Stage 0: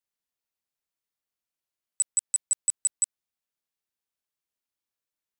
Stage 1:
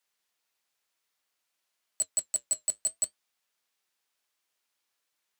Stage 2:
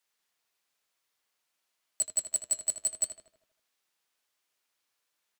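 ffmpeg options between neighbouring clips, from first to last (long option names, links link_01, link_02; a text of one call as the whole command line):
ffmpeg -i in.wav -filter_complex "[0:a]highshelf=frequency=3700:gain=7.5,asplit=2[link_01][link_02];[link_02]highpass=frequency=720:poles=1,volume=16dB,asoftclip=type=tanh:threshold=-17dB[link_03];[link_01][link_03]amix=inputs=2:normalize=0,lowpass=frequency=2700:poles=1,volume=-6dB,flanger=delay=4:depth=5.7:regen=-68:speed=0.55:shape=triangular,volume=5.5dB" out.wav
ffmpeg -i in.wav -filter_complex "[0:a]asplit=2[link_01][link_02];[link_02]adelay=79,lowpass=frequency=3400:poles=1,volume=-7dB,asplit=2[link_03][link_04];[link_04]adelay=79,lowpass=frequency=3400:poles=1,volume=0.55,asplit=2[link_05][link_06];[link_06]adelay=79,lowpass=frequency=3400:poles=1,volume=0.55,asplit=2[link_07][link_08];[link_08]adelay=79,lowpass=frequency=3400:poles=1,volume=0.55,asplit=2[link_09][link_10];[link_10]adelay=79,lowpass=frequency=3400:poles=1,volume=0.55,asplit=2[link_11][link_12];[link_12]adelay=79,lowpass=frequency=3400:poles=1,volume=0.55,asplit=2[link_13][link_14];[link_14]adelay=79,lowpass=frequency=3400:poles=1,volume=0.55[link_15];[link_01][link_03][link_05][link_07][link_09][link_11][link_13][link_15]amix=inputs=8:normalize=0" out.wav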